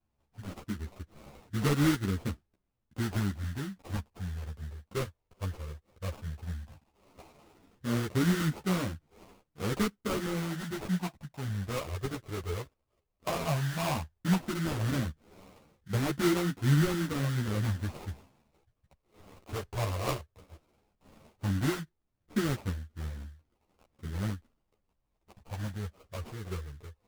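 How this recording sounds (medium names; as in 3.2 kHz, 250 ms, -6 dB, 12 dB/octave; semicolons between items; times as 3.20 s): phasing stages 12, 0.14 Hz, lowest notch 240–1100 Hz; aliases and images of a low sample rate 1.7 kHz, jitter 20%; a shimmering, thickened sound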